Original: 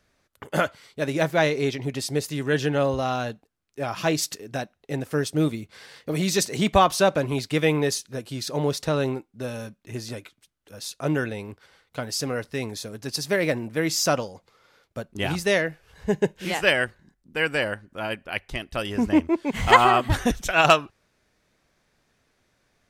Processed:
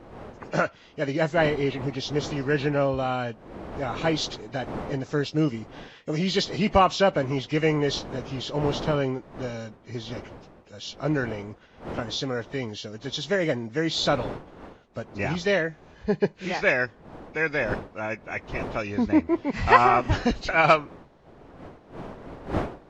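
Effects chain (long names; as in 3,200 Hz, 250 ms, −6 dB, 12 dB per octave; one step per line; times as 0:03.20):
hearing-aid frequency compression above 1,800 Hz 1.5 to 1
wind on the microphone 600 Hz −39 dBFS
level −1 dB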